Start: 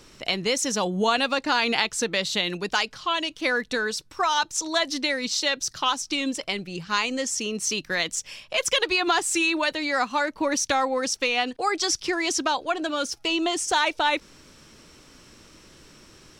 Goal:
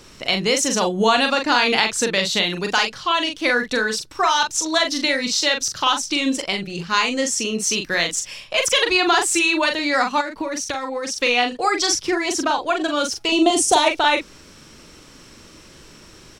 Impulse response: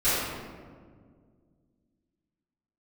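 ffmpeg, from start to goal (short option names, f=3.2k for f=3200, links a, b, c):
-filter_complex "[0:a]asettb=1/sr,asplit=3[a][b][c];[a]atrim=end=11.944[d];[b]atrim=start=11.94:end=12.6,asetpts=PTS-STARTPTS,afade=t=in:d=0.004:c=qsin,afade=t=out:st=0.656:d=0.004:c=qsin,equalizer=f=4.2k:w=0.47:g=-5[e];[c]atrim=start=12.596[f];[d][e]acrossfade=d=0.004:c1=hsin:c2=qsin[g];[g][f]acrossfade=d=0.004:c1=qsin:c2=hsin,asplit=2[h][i];[i]adelay=41,volume=-5.5dB[j];[h][j]amix=inputs=2:normalize=0,asplit=3[k][l][m];[k]afade=t=out:st=10.2:d=0.02[n];[l]acompressor=threshold=-27dB:ratio=12,afade=t=in:st=10.2:d=0.02,afade=t=out:st=11.16:d=0.02[o];[m]afade=t=in:st=11.16:d=0.02[p];[n][o][p]amix=inputs=3:normalize=0,asettb=1/sr,asplit=3[q][r][s];[q]atrim=end=13.324[t];[r]atrim=start=13.32:end=13.88,asetpts=PTS-STARTPTS,afade=t=in:d=0.004:c=qsin,afade=t=out:st=0.556:d=0.004:c=qsin,equalizer=f=100:t=o:w=0.67:g=6,equalizer=f=250:t=o:w=0.67:g=10,equalizer=f=630:t=o:w=0.67:g=7,equalizer=f=1.6k:t=o:w=0.67:g=-10,equalizer=f=10k:t=o:w=0.67:g=8[u];[s]atrim=start=13.876[v];[t][u]acrossfade=d=0.004:c1=hsin:c2=qsin[w];[w][v]acrossfade=d=0.004:c1=qsin:c2=hsin,volume=4.5dB"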